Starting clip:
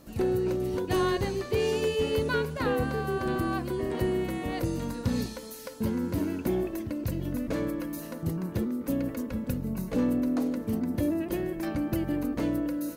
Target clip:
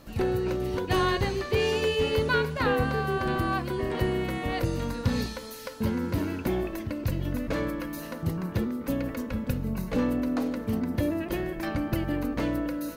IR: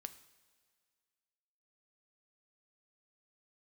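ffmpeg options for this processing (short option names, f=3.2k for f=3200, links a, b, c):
-filter_complex "[0:a]equalizer=f=290:t=o:w=2.6:g=-6.5,asplit=2[a][b];[1:a]atrim=start_sample=2205,asetrate=61740,aresample=44100,lowpass=5.5k[c];[b][c]afir=irnorm=-1:irlink=0,volume=8.5dB[d];[a][d]amix=inputs=2:normalize=0"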